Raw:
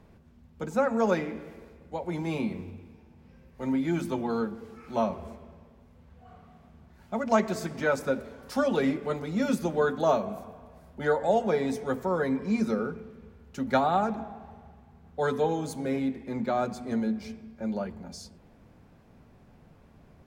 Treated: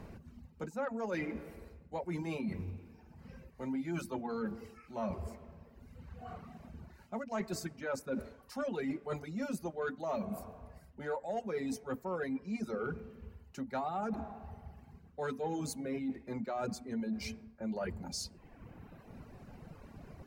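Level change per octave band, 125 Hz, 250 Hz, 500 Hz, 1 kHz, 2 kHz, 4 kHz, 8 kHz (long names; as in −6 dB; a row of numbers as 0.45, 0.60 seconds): −7.0, −9.0, −11.0, −11.0, −9.5, −5.5, −2.5 decibels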